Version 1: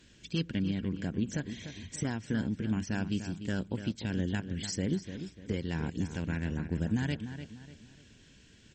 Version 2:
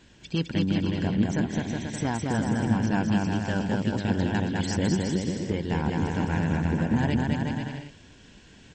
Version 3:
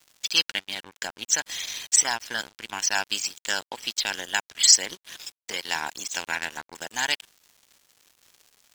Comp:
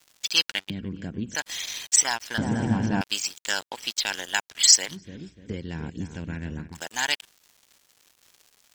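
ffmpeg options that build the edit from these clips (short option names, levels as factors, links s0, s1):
-filter_complex "[0:a]asplit=2[s0][s1];[2:a]asplit=4[s2][s3][s4][s5];[s2]atrim=end=0.702[s6];[s0]atrim=start=0.698:end=1.352[s7];[s3]atrim=start=1.348:end=2.382[s8];[1:a]atrim=start=2.378:end=3.012[s9];[s4]atrim=start=3.008:end=5.09[s10];[s1]atrim=start=4.85:end=6.82[s11];[s5]atrim=start=6.58[s12];[s6][s7]acrossfade=d=0.004:c1=hsin:c2=hsin[s13];[s13][s8]acrossfade=d=0.004:c1=hsin:c2=hsin[s14];[s14][s9]acrossfade=d=0.004:c1=hsin:c2=hsin[s15];[s15][s10]acrossfade=d=0.004:c1=hsin:c2=hsin[s16];[s16][s11]acrossfade=d=0.24:c1=tri:c2=tri[s17];[s17][s12]acrossfade=d=0.24:c1=tri:c2=tri"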